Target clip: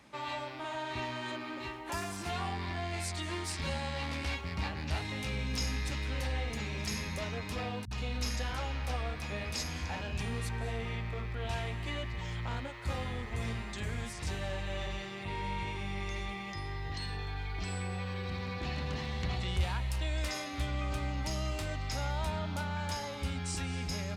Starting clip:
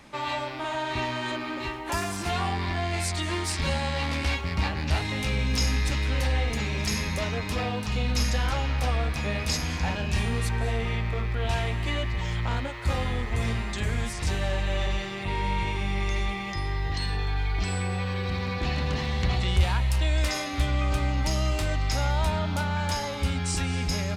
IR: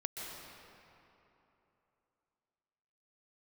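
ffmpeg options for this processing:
-filter_complex "[0:a]highpass=57,asettb=1/sr,asplit=3[link_01][link_02][link_03];[link_01]atrim=end=7.854[link_04];[link_02]atrim=start=7.85:end=10.21,asetpts=PTS-STARTPTS,afade=type=in:duration=0.004:curve=qsin,afade=type=out:start_time=2.356:duration=0.004:curve=qsin,acrossover=split=150[link_05][link_06];[link_06]adelay=60[link_07];[link_05][link_07]amix=inputs=2:normalize=0,atrim=end_sample=104076[link_08];[link_03]atrim=start=10.206[link_09];[link_04][link_08]acrossfade=duration=0.004:curve1=hsin:curve2=qsin[link_10];[link_10][link_09]acrossfade=duration=0.004:curve1=qsin:curve2=hsin,volume=-8dB"

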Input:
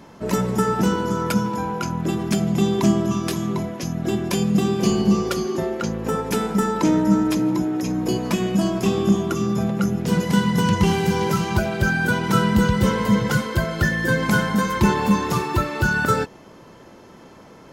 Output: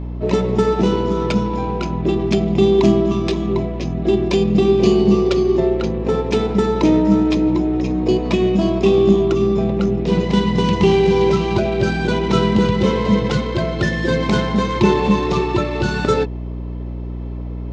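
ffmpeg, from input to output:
ffmpeg -i in.wav -af "adynamicsmooth=sensitivity=4:basefreq=2400,highpass=110,equalizer=frequency=390:width_type=q:width=4:gain=9,equalizer=frequency=620:width_type=q:width=4:gain=3,equalizer=frequency=1500:width_type=q:width=4:gain=-9,equalizer=frequency=2500:width_type=q:width=4:gain=4,equalizer=frequency=3800:width_type=q:width=4:gain=6,lowpass=frequency=7000:width=0.5412,lowpass=frequency=7000:width=1.3066,aeval=exprs='val(0)+0.0447*(sin(2*PI*60*n/s)+sin(2*PI*2*60*n/s)/2+sin(2*PI*3*60*n/s)/3+sin(2*PI*4*60*n/s)/4+sin(2*PI*5*60*n/s)/5)':channel_layout=same,volume=2dB" out.wav

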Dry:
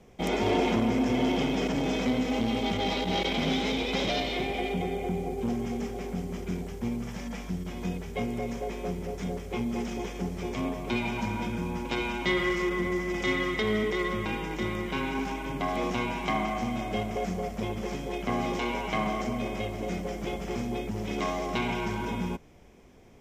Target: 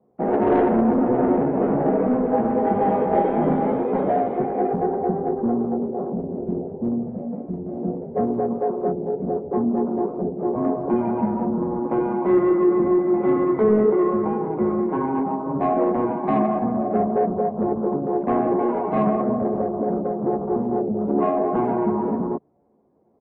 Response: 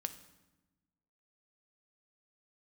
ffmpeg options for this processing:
-filter_complex "[0:a]highpass=180,afwtdn=0.0141,lowpass=frequency=1000:width=0.5412,lowpass=frequency=1000:width=1.3066,acontrast=23,asoftclip=type=tanh:threshold=-18dB,asplit=2[link_01][link_02];[link_02]adelay=14,volume=-6.5dB[link_03];[link_01][link_03]amix=inputs=2:normalize=0,asplit=3[link_04][link_05][link_06];[link_04]afade=type=out:start_time=1.59:duration=0.02[link_07];[link_05]aecho=1:1:20|52|103.2|185.1|316.2:0.631|0.398|0.251|0.158|0.1,afade=type=in:start_time=1.59:duration=0.02,afade=type=out:start_time=3.8:duration=0.02[link_08];[link_06]afade=type=in:start_time=3.8:duration=0.02[link_09];[link_07][link_08][link_09]amix=inputs=3:normalize=0,volume=5dB" -ar 48000 -c:a aac -b:a 24k

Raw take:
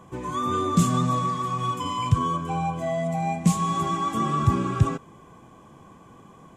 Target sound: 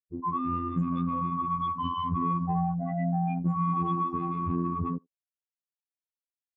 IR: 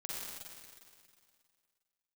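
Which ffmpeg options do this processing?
-filter_complex "[0:a]afftfilt=real='re*gte(hypot(re,im),0.112)':imag='im*gte(hypot(re,im),0.112)':win_size=1024:overlap=0.75,adynamicequalizer=threshold=0.00562:dfrequency=610:dqfactor=4.1:tfrequency=610:tqfactor=4.1:attack=5:release=100:ratio=0.375:range=2.5:mode=cutabove:tftype=bell,asplit=2[link_01][link_02];[link_02]asoftclip=type=tanh:threshold=-21dB,volume=-6dB[link_03];[link_01][link_03]amix=inputs=2:normalize=0,acrossover=split=390[link_04][link_05];[link_05]acompressor=threshold=-27dB:ratio=3[link_06];[link_04][link_06]amix=inputs=2:normalize=0,equalizer=frequency=2600:width_type=o:width=0.39:gain=5.5,anlmdn=39.8,alimiter=limit=-17.5dB:level=0:latency=1:release=18,acompressor=threshold=-28dB:ratio=4,lowpass=5800,afftfilt=real='hypot(re,im)*cos(PI*b)':imag='0':win_size=2048:overlap=0.75,asplit=2[link_07][link_08];[link_08]adelay=80,highpass=300,lowpass=3400,asoftclip=type=hard:threshold=-30.5dB,volume=-29dB[link_09];[link_07][link_09]amix=inputs=2:normalize=0,volume=4.5dB"

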